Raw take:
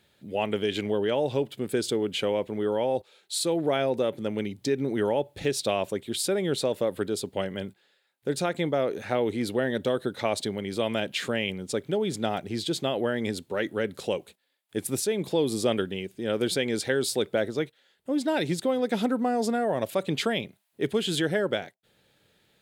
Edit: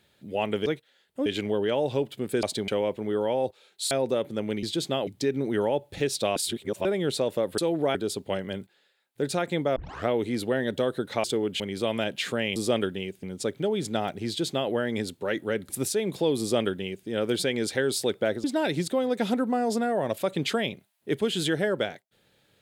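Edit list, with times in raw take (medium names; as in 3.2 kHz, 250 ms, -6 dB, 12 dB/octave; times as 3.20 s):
1.83–2.19 s: swap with 10.31–10.56 s
3.42–3.79 s: move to 7.02 s
5.80–6.29 s: reverse
8.83 s: tape start 0.32 s
12.56–13.00 s: copy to 4.51 s
13.98–14.81 s: delete
15.52–16.19 s: copy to 11.52 s
17.56–18.16 s: move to 0.66 s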